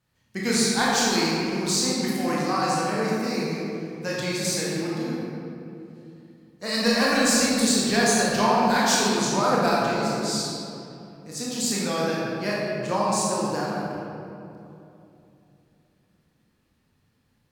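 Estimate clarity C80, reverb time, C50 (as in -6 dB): -1.5 dB, 2.8 s, -3.0 dB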